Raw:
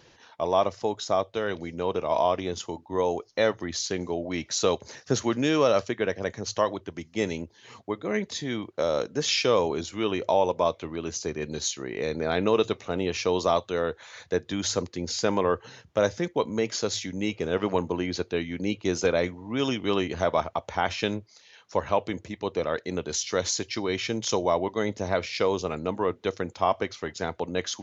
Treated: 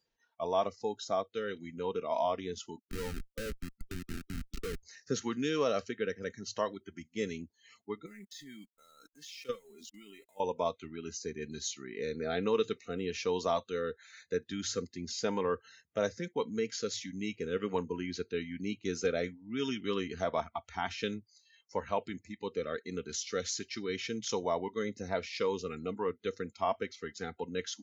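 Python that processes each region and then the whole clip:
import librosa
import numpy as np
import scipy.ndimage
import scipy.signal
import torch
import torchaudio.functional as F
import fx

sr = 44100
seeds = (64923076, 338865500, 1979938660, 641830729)

y = fx.chain(x, sr, fx.high_shelf(hz=3200.0, db=-9.5),
    fx.schmitt(flips_db=-26.0),
    fx.band_squash(depth_pct=40), at=(2.79, 4.83))
y = fx.chain(y, sr, fx.highpass(hz=47.0, slope=24),
    fx.level_steps(step_db=20),
    fx.sample_gate(floor_db=-47.0), at=(8.06, 10.4))
y = y + 0.36 * np.pad(y, (int(4.4 * sr / 1000.0), 0))[:len(y)]
y = fx.noise_reduce_blind(y, sr, reduce_db=21)
y = y * librosa.db_to_amplitude(-8.5)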